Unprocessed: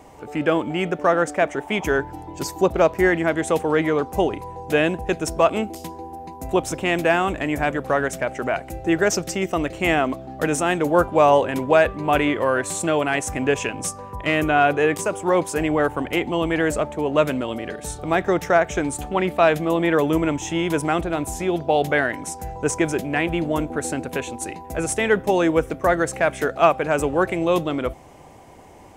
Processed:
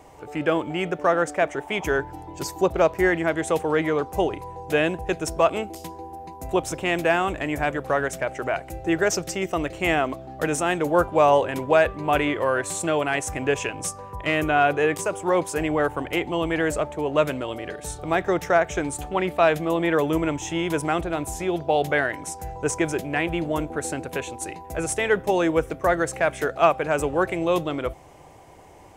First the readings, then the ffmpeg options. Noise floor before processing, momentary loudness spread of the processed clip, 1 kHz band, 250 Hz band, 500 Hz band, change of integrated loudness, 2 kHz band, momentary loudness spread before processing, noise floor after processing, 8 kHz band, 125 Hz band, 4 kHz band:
-39 dBFS, 10 LU, -2.0 dB, -3.5 dB, -2.5 dB, -2.5 dB, -2.0 dB, 9 LU, -42 dBFS, -2.0 dB, -3.0 dB, -2.0 dB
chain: -af "equalizer=f=230:w=3.8:g=-8.5,volume=-2dB"

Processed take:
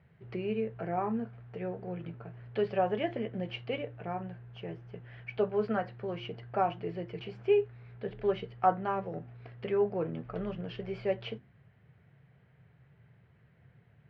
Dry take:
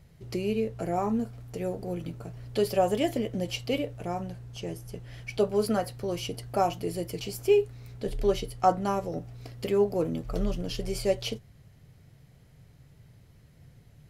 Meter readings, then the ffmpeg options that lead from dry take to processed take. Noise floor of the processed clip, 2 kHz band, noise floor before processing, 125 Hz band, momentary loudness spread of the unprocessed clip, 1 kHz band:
-64 dBFS, -1.5 dB, -57 dBFS, -5.0 dB, 13 LU, -3.0 dB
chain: -af "highpass=110,equalizer=f=280:t=q:w=4:g=-9,equalizer=f=550:t=q:w=4:g=-3,equalizer=f=1.6k:t=q:w=4:g=5,lowpass=f=2.7k:w=0.5412,lowpass=f=2.7k:w=1.3066,bandreject=f=50:t=h:w=6,bandreject=f=100:t=h:w=6,bandreject=f=150:t=h:w=6,bandreject=f=200:t=h:w=6,bandreject=f=250:t=h:w=6,bandreject=f=300:t=h:w=6,bandreject=f=350:t=h:w=6,volume=-2.5dB"

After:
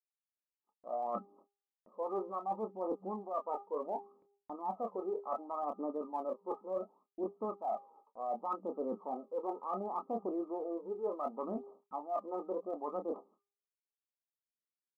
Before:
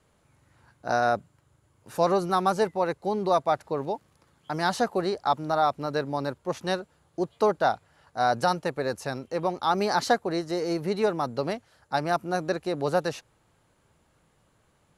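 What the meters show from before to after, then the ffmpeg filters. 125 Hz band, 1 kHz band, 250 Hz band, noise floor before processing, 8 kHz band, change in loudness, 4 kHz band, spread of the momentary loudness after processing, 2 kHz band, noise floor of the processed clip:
under -20 dB, -12.5 dB, -11.5 dB, -67 dBFS, under -35 dB, -12.5 dB, under -40 dB, 5 LU, under -35 dB, under -85 dBFS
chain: -filter_complex "[0:a]afftfilt=real='re*between(b*sr/4096,190,1300)':imag='im*between(b*sr/4096,190,1300)':win_size=4096:overlap=0.75,agate=range=-48dB:threshold=-59dB:ratio=16:detection=peak,asplit=2[a][b];[b]adelay=27,volume=-9dB[c];[a][c]amix=inputs=2:normalize=0,bandreject=f=402.6:t=h:w=4,bandreject=f=805.2:t=h:w=4,bandreject=f=1.2078k:t=h:w=4,bandreject=f=1.6104k:t=h:w=4,bandreject=f=2.013k:t=h:w=4,aphaser=in_gain=1:out_gain=1:delay=2.5:decay=0.64:speed=0.68:type=triangular,areverse,acompressor=threshold=-32dB:ratio=8,areverse,volume=-2.5dB"

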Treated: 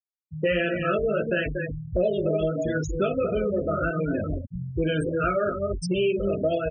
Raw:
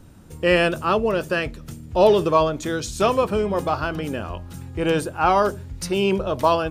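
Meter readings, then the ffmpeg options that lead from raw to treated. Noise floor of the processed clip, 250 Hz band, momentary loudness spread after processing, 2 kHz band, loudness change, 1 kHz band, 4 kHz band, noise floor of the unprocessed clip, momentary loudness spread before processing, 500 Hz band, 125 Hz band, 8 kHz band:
-57 dBFS, -2.5 dB, 5 LU, -4.0 dB, -5.0 dB, -11.5 dB, -8.0 dB, -41 dBFS, 12 LU, -4.0 dB, -0.5 dB, -10.0 dB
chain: -filter_complex "[0:a]asuperstop=centerf=920:order=20:qfactor=1.7,asplit=2[a][b];[b]adelay=45,volume=-14dB[c];[a][c]amix=inputs=2:normalize=0,asplit=2[d][e];[e]aecho=0:1:37.9|236.2:0.355|0.355[f];[d][f]amix=inputs=2:normalize=0,flanger=delay=17:depth=3.1:speed=1.5,afftfilt=real='re*gte(hypot(re,im),0.0631)':imag='im*gte(hypot(re,im),0.0631)':win_size=1024:overlap=0.75,acompressor=threshold=-29dB:ratio=4,volume=6.5dB"

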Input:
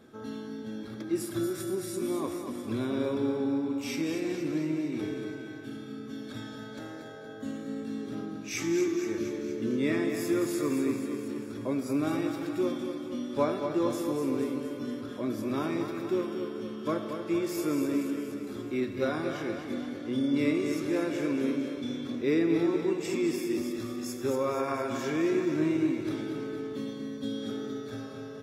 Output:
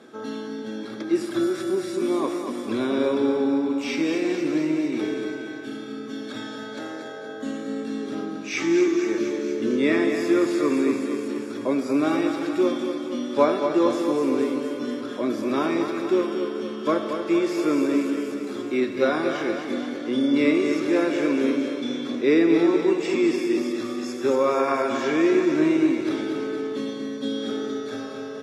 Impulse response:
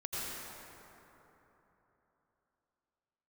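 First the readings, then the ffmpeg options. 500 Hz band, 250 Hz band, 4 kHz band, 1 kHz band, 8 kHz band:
+8.5 dB, +7.0 dB, +8.0 dB, +9.0 dB, +2.0 dB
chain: -filter_complex "[0:a]lowpass=9.1k,acrossover=split=4800[a][b];[b]acompressor=threshold=-56dB:ratio=4:attack=1:release=60[c];[a][c]amix=inputs=2:normalize=0,highpass=260,volume=9dB"

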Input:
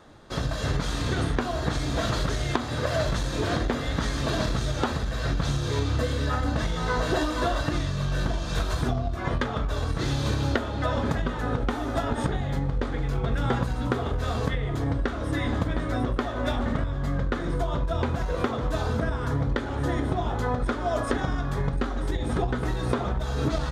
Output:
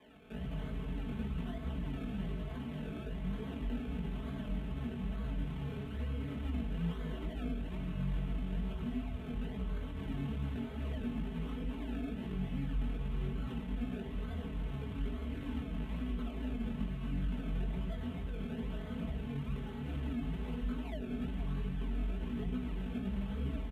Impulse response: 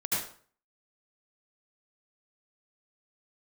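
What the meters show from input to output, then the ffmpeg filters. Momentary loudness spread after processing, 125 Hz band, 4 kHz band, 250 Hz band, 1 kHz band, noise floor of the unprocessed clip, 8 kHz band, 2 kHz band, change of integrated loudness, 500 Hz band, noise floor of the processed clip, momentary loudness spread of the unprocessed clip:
3 LU, -12.0 dB, -18.5 dB, -8.5 dB, -21.5 dB, -31 dBFS, under -25 dB, -18.5 dB, -12.0 dB, -17.5 dB, -43 dBFS, 2 LU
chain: -filter_complex "[0:a]alimiter=limit=-20dB:level=0:latency=1:release=33,flanger=delay=3:depth=2.5:regen=70:speed=1.1:shape=triangular,asplit=2[a][b];[b]equalizer=f=110:w=1:g=8[c];[1:a]atrim=start_sample=2205[d];[c][d]afir=irnorm=-1:irlink=0,volume=-11dB[e];[a][e]amix=inputs=2:normalize=0,acrusher=samples=31:mix=1:aa=0.000001:lfo=1:lforange=31:lforate=1.1,flanger=delay=15:depth=6.5:speed=2.3,aecho=1:1:4.6:0.98,aresample=32000,aresample=44100,highpass=44,highshelf=f=3.9k:t=q:w=3:g=-8,acrossover=split=290[f][g];[g]acompressor=threshold=-51dB:ratio=2.5[h];[f][h]amix=inputs=2:normalize=0,volume=-5dB"

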